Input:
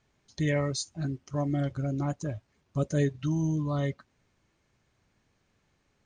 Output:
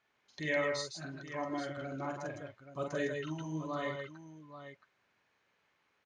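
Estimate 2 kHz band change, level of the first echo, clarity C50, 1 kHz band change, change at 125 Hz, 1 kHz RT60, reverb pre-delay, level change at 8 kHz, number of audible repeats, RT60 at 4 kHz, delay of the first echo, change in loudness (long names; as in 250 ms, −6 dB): +2.5 dB, −4.0 dB, no reverb audible, −0.5 dB, −16.0 dB, no reverb audible, no reverb audible, −8.5 dB, 3, no reverb audible, 45 ms, −7.5 dB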